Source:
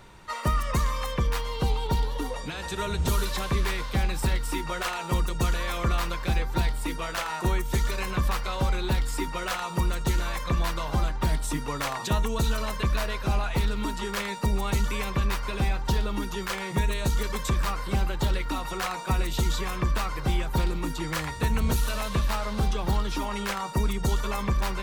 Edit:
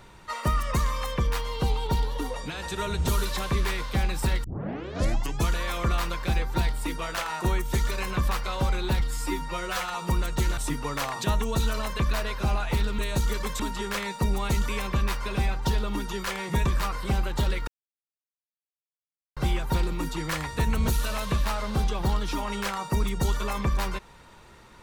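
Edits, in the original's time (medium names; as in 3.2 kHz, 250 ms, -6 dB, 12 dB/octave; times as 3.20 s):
4.44 s: tape start 1.05 s
9.00–9.63 s: stretch 1.5×
10.26–11.41 s: delete
16.88–17.49 s: move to 13.82 s
18.51–20.20 s: mute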